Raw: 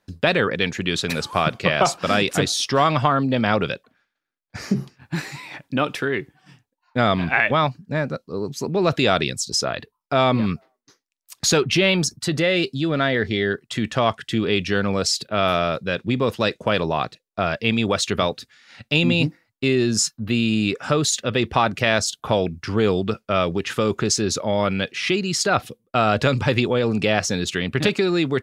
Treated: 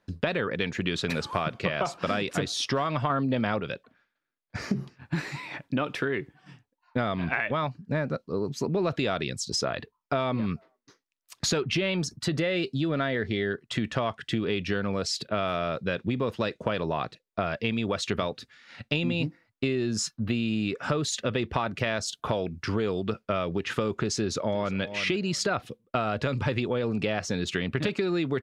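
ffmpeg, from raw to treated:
ffmpeg -i in.wav -filter_complex "[0:a]asettb=1/sr,asplit=3[link_01][link_02][link_03];[link_01]atrim=end=22.014[link_04];[link_02]atrim=start=22.01:end=23.1,asetpts=PTS-STARTPTS,afade=type=in:duration=0.004:curve=qsin,afade=type=out:start_time=1.086:duration=0.004:curve=qsin,bass=frequency=250:gain=-2,treble=frequency=4000:gain=3[link_05];[link_03]atrim=start=23.096[link_06];[link_04][link_05]acrossfade=duration=0.004:curve1=hsin:curve2=qsin[link_07];[link_07][link_06]acrossfade=duration=0.004:curve1=qsin:curve2=hsin,asplit=2[link_08][link_09];[link_09]afade=type=in:start_time=24.17:duration=0.01,afade=type=out:start_time=24.81:duration=0.01,aecho=0:1:350|700:0.158489|0.0237734[link_10];[link_08][link_10]amix=inputs=2:normalize=0,asplit=3[link_11][link_12][link_13];[link_11]atrim=end=3.102[link_14];[link_12]atrim=start=3.098:end=3.602,asetpts=PTS-STARTPTS,volume=5.5dB[link_15];[link_13]atrim=start=3.598[link_16];[link_14][link_15]acrossfade=duration=0.004:curve1=hsin:curve2=hsin[link_17];[link_17][link_16]acrossfade=duration=0.004:curve1=hsin:curve2=hsin,lowpass=frequency=3200:poles=1,bandreject=frequency=790:width=16,acompressor=threshold=-24dB:ratio=6" out.wav

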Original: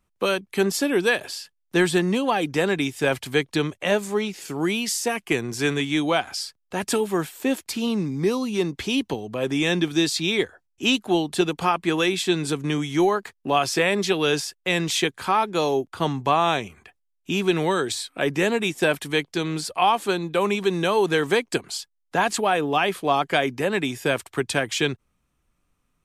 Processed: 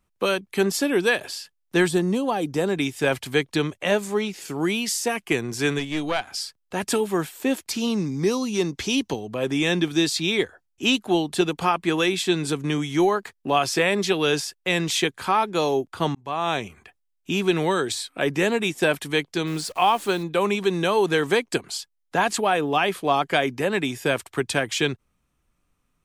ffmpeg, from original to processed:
ffmpeg -i in.wav -filter_complex "[0:a]asettb=1/sr,asplit=3[link_01][link_02][link_03];[link_01]atrim=end=1.884[link_04];[link_02]atrim=start=1.88:end=2.77,asetpts=PTS-STARTPTS,afade=type=in:duration=0.004:curve=qsin,afade=type=out:start_time=0.886:duration=0.004:curve=qsin,equalizer=frequency=2200:width=0.74:gain=-9[link_05];[link_03]atrim=start=2.766[link_06];[link_04][link_05]acrossfade=duration=0.004:curve1=hsin:curve2=qsin[link_07];[link_07][link_06]acrossfade=duration=0.004:curve1=qsin:curve2=hsin,asplit=3[link_08][link_09][link_10];[link_08]afade=type=out:start_time=5.78:duration=0.02[link_11];[link_09]aeval=exprs='(tanh(5.01*val(0)+0.75)-tanh(0.75))/5.01':channel_layout=same,afade=type=in:start_time=5.78:duration=0.02,afade=type=out:start_time=6.34:duration=0.02[link_12];[link_10]afade=type=in:start_time=6.34:duration=0.02[link_13];[link_11][link_12][link_13]amix=inputs=3:normalize=0,asettb=1/sr,asplit=3[link_14][link_15][link_16];[link_14]atrim=end=7.714[link_17];[link_15]atrim=start=7.71:end=9.19,asetpts=PTS-STARTPTS,afade=type=in:duration=0.004:curve=qsin,afade=type=out:start_time=1.476:duration=0.004:curve=qsin,equalizer=frequency=5900:width_type=o:width=0.68:gain=7.5[link_18];[link_16]atrim=start=9.186[link_19];[link_17][link_18]acrossfade=duration=0.004:curve1=hsin:curve2=qsin[link_20];[link_20][link_19]acrossfade=duration=0.004:curve1=qsin:curve2=hsin,asplit=3[link_21][link_22][link_23];[link_21]afade=type=out:start_time=19.46:duration=0.02[link_24];[link_22]acrusher=bits=8:dc=4:mix=0:aa=0.000001,afade=type=in:start_time=19.46:duration=0.02,afade=type=out:start_time=20.22:duration=0.02[link_25];[link_23]afade=type=in:start_time=20.22:duration=0.02[link_26];[link_24][link_25][link_26]amix=inputs=3:normalize=0,asplit=2[link_27][link_28];[link_27]atrim=end=16.15,asetpts=PTS-STARTPTS,afade=type=out:start_time=16.146:duration=0.004:curve=hsin[link_29];[link_28]atrim=start=16.15,asetpts=PTS-STARTPTS,afade=type=in:duration=0.48[link_30];[link_29][link_30]concat=n=2:v=0:a=1" out.wav

